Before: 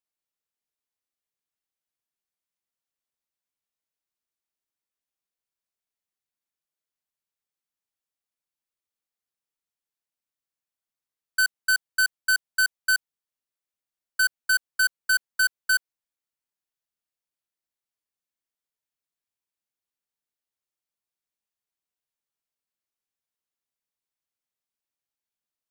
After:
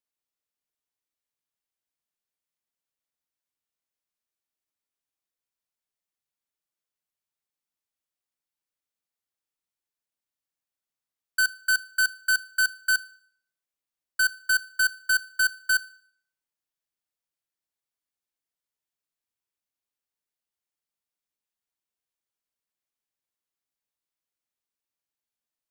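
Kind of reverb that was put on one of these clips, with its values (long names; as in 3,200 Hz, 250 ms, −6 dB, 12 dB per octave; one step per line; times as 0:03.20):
feedback delay network reverb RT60 0.6 s, low-frequency decay 0.9×, high-frequency decay 0.9×, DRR 16 dB
level −1 dB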